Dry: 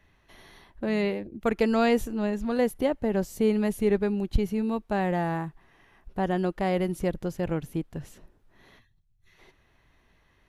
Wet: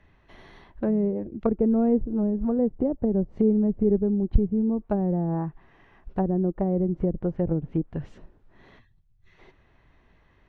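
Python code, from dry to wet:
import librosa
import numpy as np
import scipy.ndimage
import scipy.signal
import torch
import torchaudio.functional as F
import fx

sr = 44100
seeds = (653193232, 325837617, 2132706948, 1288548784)

y = fx.spacing_loss(x, sr, db_at_10k=21)
y = fx.env_lowpass_down(y, sr, base_hz=390.0, full_db=-24.0)
y = y * librosa.db_to_amplitude(5.0)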